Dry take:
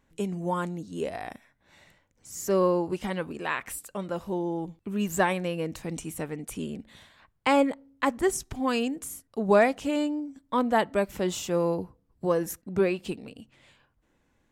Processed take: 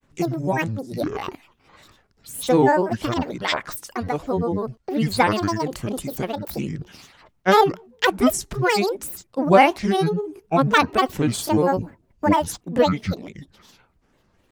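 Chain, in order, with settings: grains, spray 13 ms, pitch spread up and down by 12 st; gain +8 dB

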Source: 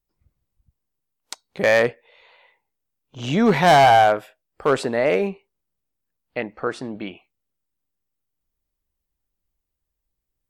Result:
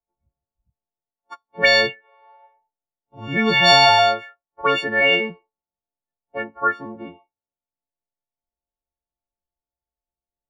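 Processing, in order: frequency quantiser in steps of 4 st; spectral noise reduction 7 dB; envelope low-pass 780–4200 Hz up, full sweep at -10.5 dBFS; gain -4 dB

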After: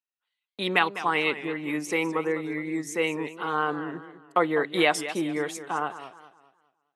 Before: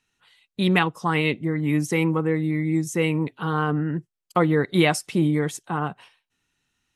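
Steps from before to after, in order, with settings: gate -50 dBFS, range -25 dB; HPF 430 Hz 12 dB/oct; high shelf 7700 Hz -7 dB; warbling echo 0.207 s, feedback 36%, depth 159 cents, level -13 dB

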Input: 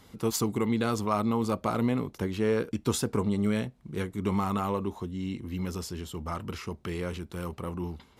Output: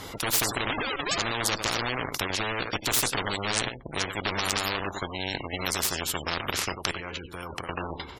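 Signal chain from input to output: 0.7–1.18 sine-wave speech; 6.91–7.69 level quantiser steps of 23 dB; on a send at -18.5 dB: bell 2400 Hz +5 dB 1.5 oct + reverb RT60 0.25 s, pre-delay 3 ms; on the sum: hard clip -17.5 dBFS, distortion -29 dB; outdoor echo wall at 16 m, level -12 dB; added harmonics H 4 -24 dB, 5 -6 dB, 7 -7 dB, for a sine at -15.5 dBFS; bell 220 Hz -14 dB 0.25 oct; spectral gate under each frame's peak -30 dB strong; maximiser +21 dB; spectral compressor 4:1; gain -1 dB

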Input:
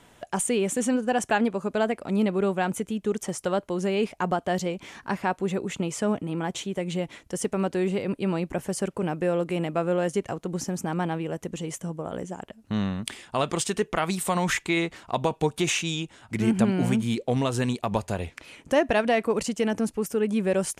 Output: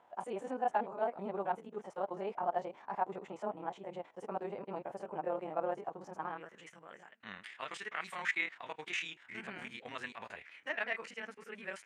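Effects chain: stepped spectrum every 50 ms; granular stretch 0.57×, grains 53 ms; band-pass sweep 830 Hz -> 1900 Hz, 6.05–6.69

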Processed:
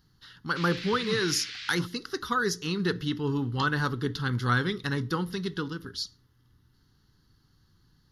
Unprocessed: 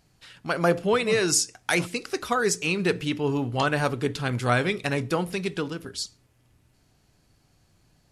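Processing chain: fixed phaser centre 2400 Hz, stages 6; 0.55–1.72 band noise 1500–4800 Hz -40 dBFS

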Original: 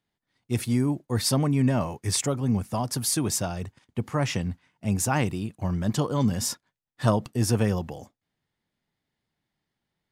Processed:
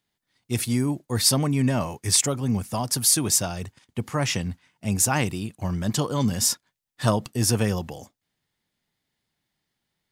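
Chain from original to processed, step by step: high shelf 2400 Hz +8 dB

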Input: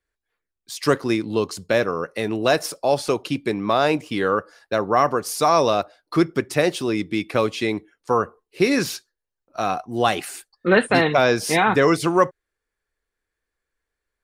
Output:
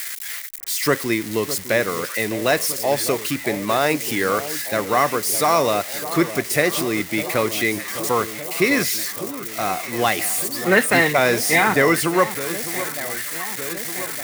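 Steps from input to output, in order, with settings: switching spikes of -18 dBFS; bell 2000 Hz +10.5 dB 0.35 oct; on a send: echo with dull and thin repeats by turns 0.607 s, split 1100 Hz, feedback 81%, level -12 dB; on the sum: gain -1 dB

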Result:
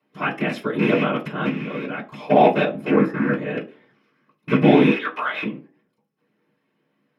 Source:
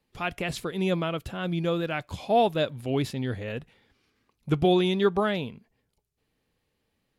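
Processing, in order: rattling part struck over -30 dBFS, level -21 dBFS; 1.49–2.16 level quantiser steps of 18 dB; 2.91–3.34 resonant high shelf 2100 Hz -11 dB, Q 3; 4.91–5.43 HPF 1300 Hz 12 dB/oct; whisperiser; reverb RT60 0.40 s, pre-delay 3 ms, DRR -1 dB; gain -7 dB

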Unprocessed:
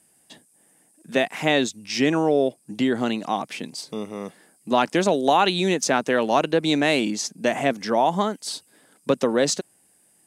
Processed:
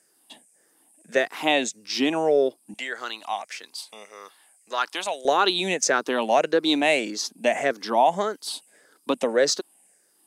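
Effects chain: moving spectral ripple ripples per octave 0.55, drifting -1.7 Hz, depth 9 dB; HPF 300 Hz 12 dB/oct, from 2.74 s 970 Hz, from 5.25 s 310 Hz; gain -1.5 dB

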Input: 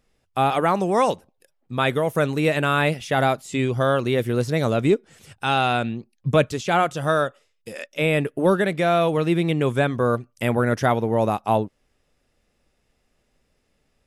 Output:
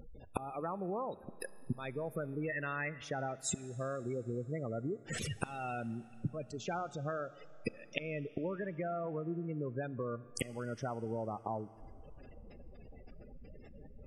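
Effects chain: 2.49–3.04 bell 1900 Hz +13 dB 0.44 oct; flipped gate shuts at -25 dBFS, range -28 dB; compressor 10:1, threshold -51 dBFS, peak gain reduction 20.5 dB; short-mantissa float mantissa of 2-bit; spectral gate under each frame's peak -15 dB strong; Schroeder reverb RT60 3.1 s, combs from 27 ms, DRR 17.5 dB; gain +17.5 dB

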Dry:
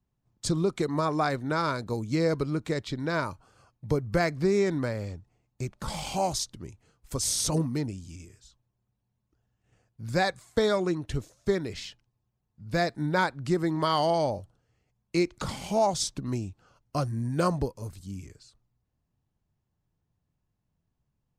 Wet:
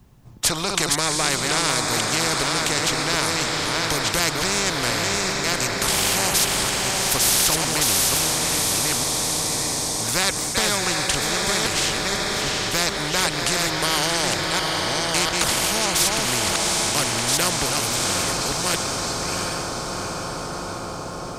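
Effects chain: reverse delay 0.695 s, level -5.5 dB; diffused feedback echo 0.752 s, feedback 55%, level -9 dB; spectral compressor 4:1; gain +8 dB

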